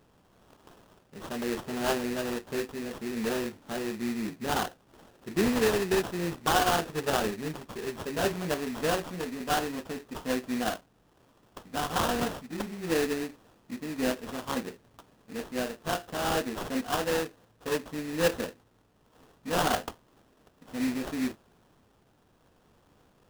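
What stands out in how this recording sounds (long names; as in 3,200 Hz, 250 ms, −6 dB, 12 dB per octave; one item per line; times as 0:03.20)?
a buzz of ramps at a fixed pitch in blocks of 8 samples
tremolo triangle 0.62 Hz, depth 30%
aliases and images of a low sample rate 2,200 Hz, jitter 20%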